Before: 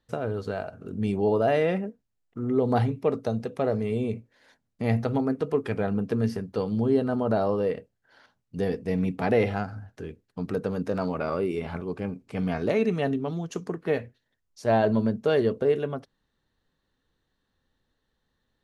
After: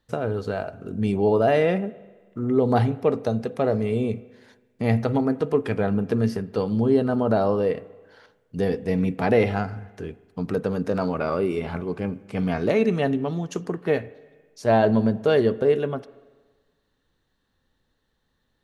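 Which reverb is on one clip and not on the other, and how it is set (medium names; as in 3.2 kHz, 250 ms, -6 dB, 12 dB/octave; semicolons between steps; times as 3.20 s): spring tank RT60 1.4 s, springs 40/46 ms, chirp 45 ms, DRR 18.5 dB; trim +3.5 dB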